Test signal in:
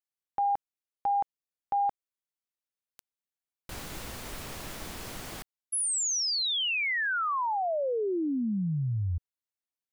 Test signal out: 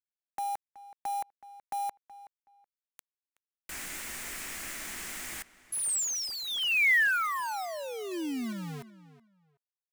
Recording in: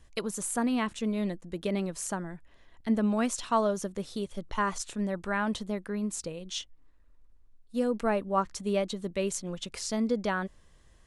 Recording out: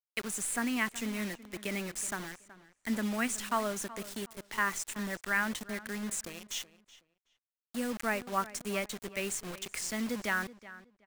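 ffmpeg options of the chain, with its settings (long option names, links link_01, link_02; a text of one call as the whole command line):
ffmpeg -i in.wav -filter_complex "[0:a]acrossover=split=3300[link_01][link_02];[link_02]acompressor=threshold=-37dB:ratio=4:attack=1:release=60[link_03];[link_01][link_03]amix=inputs=2:normalize=0,equalizer=frequency=125:width_type=o:width=1:gain=-12,equalizer=frequency=500:width_type=o:width=1:gain=-9,equalizer=frequency=1000:width_type=o:width=1:gain=-5,equalizer=frequency=2000:width_type=o:width=1:gain=9,equalizer=frequency=4000:width_type=o:width=1:gain=-7,equalizer=frequency=8000:width_type=o:width=1:gain=8,acrossover=split=160[link_04][link_05];[link_04]acompressor=threshold=-51dB:ratio=8:attack=1.7:release=202:knee=6:detection=rms[link_06];[link_06][link_05]amix=inputs=2:normalize=0,acrusher=bits=6:mix=0:aa=0.000001,asplit=2[link_07][link_08];[link_08]adelay=374,lowpass=frequency=3400:poles=1,volume=-16.5dB,asplit=2[link_09][link_10];[link_10]adelay=374,lowpass=frequency=3400:poles=1,volume=0.21[link_11];[link_07][link_09][link_11]amix=inputs=3:normalize=0" out.wav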